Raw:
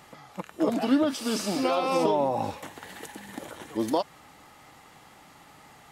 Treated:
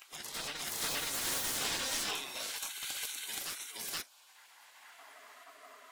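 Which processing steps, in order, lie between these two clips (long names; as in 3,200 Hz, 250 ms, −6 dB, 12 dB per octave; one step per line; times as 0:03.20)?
sub-octave generator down 1 octave, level +1 dB
high-pass filter sweep 2,000 Hz → 900 Hz, 0:04.19–0:05.65
noise reduction from a noise print of the clip's start 14 dB
in parallel at −1 dB: brickwall limiter −27 dBFS, peak gain reduction 7 dB
on the sum: hard clipping −30.5 dBFS, distortion −9 dB
gate on every frequency bin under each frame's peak −15 dB weak
backwards echo 474 ms −3.5 dB
level +5 dB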